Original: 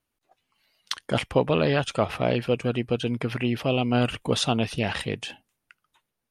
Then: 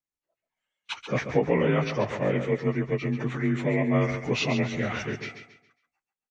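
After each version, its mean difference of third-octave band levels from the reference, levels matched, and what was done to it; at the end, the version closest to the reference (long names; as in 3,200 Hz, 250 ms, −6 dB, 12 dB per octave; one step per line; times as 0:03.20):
6.5 dB: partials spread apart or drawn together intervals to 88%
noise gate −53 dBFS, range −15 dB
on a send: repeating echo 137 ms, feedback 33%, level −9 dB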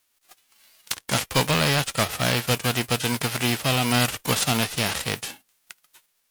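11.0 dB: spectral envelope flattened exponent 0.3
sine wavefolder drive 7 dB, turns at −3.5 dBFS
one half of a high-frequency compander encoder only
level −8.5 dB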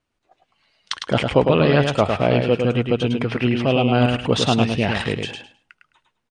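4.5 dB: Butterworth low-pass 9,200 Hz 48 dB per octave
high-shelf EQ 6,600 Hz −9.5 dB
repeating echo 105 ms, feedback 20%, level −5 dB
level +5.5 dB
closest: third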